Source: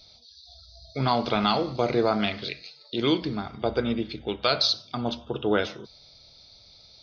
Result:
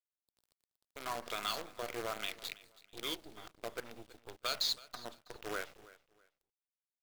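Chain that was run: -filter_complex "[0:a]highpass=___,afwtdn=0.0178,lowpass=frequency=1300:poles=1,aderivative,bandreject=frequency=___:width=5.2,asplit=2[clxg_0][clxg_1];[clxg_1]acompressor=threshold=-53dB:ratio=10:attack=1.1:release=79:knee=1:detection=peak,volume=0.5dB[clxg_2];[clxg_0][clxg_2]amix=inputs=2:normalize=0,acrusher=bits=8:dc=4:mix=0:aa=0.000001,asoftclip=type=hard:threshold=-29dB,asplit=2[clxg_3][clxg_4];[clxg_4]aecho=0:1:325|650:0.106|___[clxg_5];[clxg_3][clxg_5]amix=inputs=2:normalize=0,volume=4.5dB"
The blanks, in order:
270, 840, 0.0275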